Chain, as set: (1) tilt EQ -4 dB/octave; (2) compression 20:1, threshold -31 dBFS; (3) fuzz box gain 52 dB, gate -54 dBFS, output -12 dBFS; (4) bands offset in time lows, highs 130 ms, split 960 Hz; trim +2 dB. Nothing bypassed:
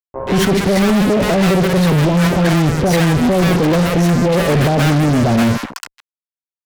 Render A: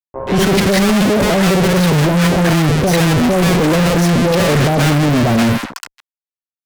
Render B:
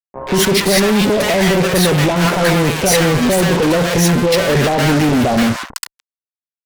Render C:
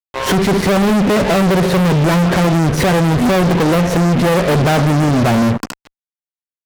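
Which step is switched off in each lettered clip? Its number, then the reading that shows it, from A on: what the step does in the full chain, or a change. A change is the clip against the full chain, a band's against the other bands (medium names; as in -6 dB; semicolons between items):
2, mean gain reduction 12.5 dB; 1, 8 kHz band +6.5 dB; 4, echo-to-direct 5.5 dB to none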